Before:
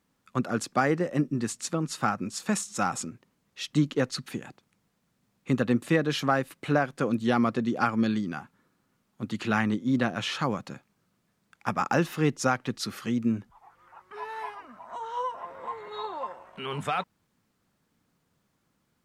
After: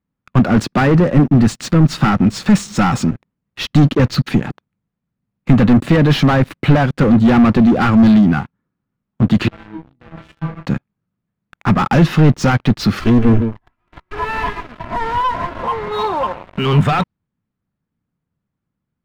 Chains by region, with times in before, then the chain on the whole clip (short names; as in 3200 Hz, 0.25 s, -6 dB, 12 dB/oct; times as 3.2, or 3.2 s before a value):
9.48–10.66 LPF 1300 Hz 6 dB/oct + compressor 16:1, threshold -27 dBFS + metallic resonator 160 Hz, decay 0.53 s, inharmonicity 0.002
13–15.63 minimum comb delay 3 ms + echo 0.156 s -13.5 dB
whole clip: dynamic EQ 4700 Hz, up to +8 dB, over -50 dBFS, Q 1.1; sample leveller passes 5; tone controls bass +11 dB, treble -15 dB; gain -1 dB